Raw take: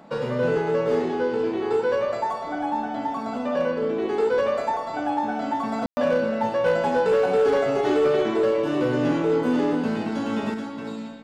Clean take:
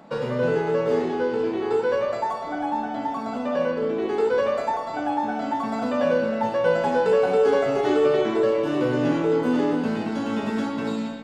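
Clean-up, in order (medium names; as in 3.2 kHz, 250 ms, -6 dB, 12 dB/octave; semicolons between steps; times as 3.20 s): clip repair -15 dBFS; room tone fill 5.86–5.97 s; gain correction +6 dB, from 10.54 s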